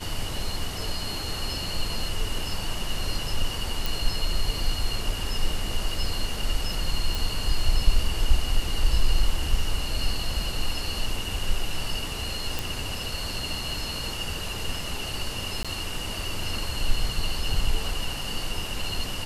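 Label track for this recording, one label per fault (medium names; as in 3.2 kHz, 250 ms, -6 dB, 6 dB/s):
3.860000	3.860000	pop
7.150000	7.150000	pop
12.590000	12.590000	pop
15.630000	15.650000	dropout 16 ms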